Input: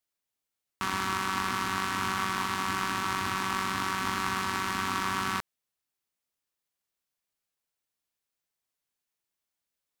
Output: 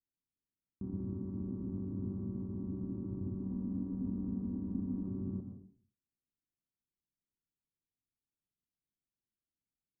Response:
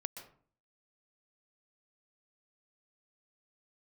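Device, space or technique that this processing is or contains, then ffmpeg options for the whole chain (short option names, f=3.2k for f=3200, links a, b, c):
next room: -filter_complex "[0:a]lowpass=f=320:w=0.5412,lowpass=f=320:w=1.3066[a];[1:a]atrim=start_sample=2205[b];[a][b]afir=irnorm=-1:irlink=0,asettb=1/sr,asplit=3[c][d][e];[c]atrim=end=3.434[f];[d]atrim=start=3.43:end=5.08,asetpts=PTS-STARTPTS,afade=t=in:d=0.004:c=qsin,afade=t=out:st=1.646:d=0.004:c=qsin,aecho=1:1:4.1:0.59,atrim=end_sample=72765[g];[e]atrim=start=5.076[h];[f][g]acrossfade=d=0.004:c1=hsin:c2=qsin[i];[i][h]acrossfade=d=0.004:c1=qsin:c2=hsin,volume=3.5dB"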